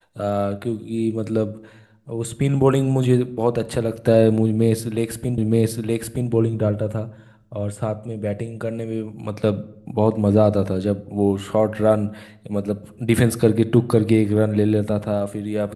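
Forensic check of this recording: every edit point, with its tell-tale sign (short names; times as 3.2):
5.38 repeat of the last 0.92 s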